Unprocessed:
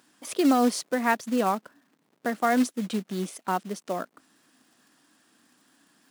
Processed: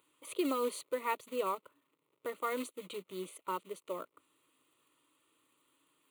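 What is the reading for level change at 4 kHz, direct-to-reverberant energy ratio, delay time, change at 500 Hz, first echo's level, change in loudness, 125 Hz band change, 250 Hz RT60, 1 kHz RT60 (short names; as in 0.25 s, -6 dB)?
-10.0 dB, none, none, -7.5 dB, none, -11.5 dB, -20.0 dB, none, none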